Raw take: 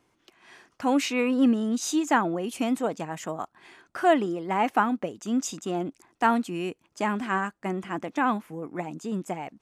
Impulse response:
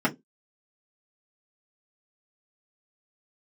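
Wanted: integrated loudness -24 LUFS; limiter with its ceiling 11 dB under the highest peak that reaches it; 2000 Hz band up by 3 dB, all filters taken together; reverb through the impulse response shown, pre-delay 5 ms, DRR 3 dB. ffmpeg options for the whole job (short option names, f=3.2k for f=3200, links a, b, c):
-filter_complex "[0:a]equalizer=f=2k:t=o:g=4,alimiter=limit=-18dB:level=0:latency=1,asplit=2[a][b];[1:a]atrim=start_sample=2205,adelay=5[c];[b][c]afir=irnorm=-1:irlink=0,volume=-16dB[d];[a][d]amix=inputs=2:normalize=0,volume=-1dB"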